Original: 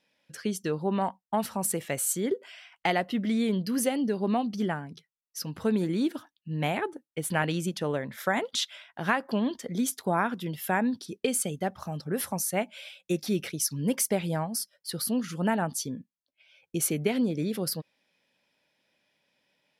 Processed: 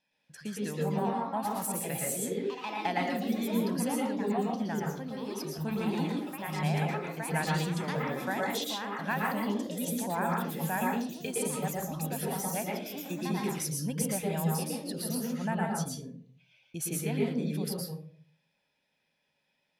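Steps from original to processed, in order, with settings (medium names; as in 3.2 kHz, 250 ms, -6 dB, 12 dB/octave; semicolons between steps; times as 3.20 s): ever faster or slower copies 241 ms, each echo +3 st, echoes 2, each echo -6 dB; reverberation RT60 0.50 s, pre-delay 111 ms, DRR -1.5 dB; trim -8.5 dB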